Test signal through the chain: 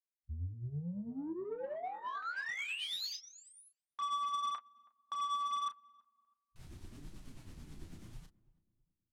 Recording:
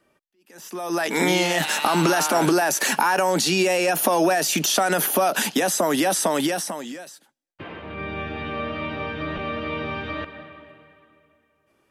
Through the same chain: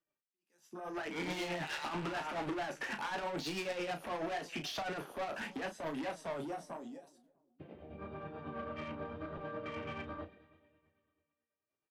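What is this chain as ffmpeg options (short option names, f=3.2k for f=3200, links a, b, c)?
-filter_complex "[0:a]acrossover=split=4300[a][b];[b]acompressor=threshold=-33dB:ratio=4:attack=1:release=60[c];[a][c]amix=inputs=2:normalize=0,lowpass=11k,afwtdn=0.0355,highshelf=f=2.3k:g=4,flanger=delay=6.2:depth=7.6:regen=-27:speed=0.84:shape=sinusoidal,asoftclip=type=tanh:threshold=-27.5dB,tremolo=f=9.2:d=0.5,asplit=2[d][e];[e]adelay=34,volume=-9dB[f];[d][f]amix=inputs=2:normalize=0,asplit=2[g][h];[h]adelay=324,lowpass=f=940:p=1,volume=-21.5dB,asplit=2[i][j];[j]adelay=324,lowpass=f=940:p=1,volume=0.4,asplit=2[k][l];[l]adelay=324,lowpass=f=940:p=1,volume=0.4[m];[g][i][k][m]amix=inputs=4:normalize=0,volume=-6.5dB"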